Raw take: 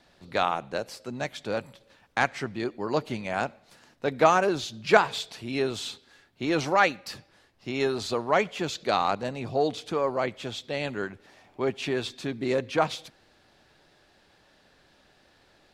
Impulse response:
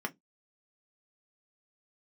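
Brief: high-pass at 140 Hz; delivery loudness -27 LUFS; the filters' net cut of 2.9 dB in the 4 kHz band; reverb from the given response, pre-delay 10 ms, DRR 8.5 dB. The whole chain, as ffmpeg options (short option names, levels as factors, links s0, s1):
-filter_complex "[0:a]highpass=140,equalizer=f=4000:t=o:g=-3.5,asplit=2[s0][s1];[1:a]atrim=start_sample=2205,adelay=10[s2];[s1][s2]afir=irnorm=-1:irlink=0,volume=0.237[s3];[s0][s3]amix=inputs=2:normalize=0,volume=1.06"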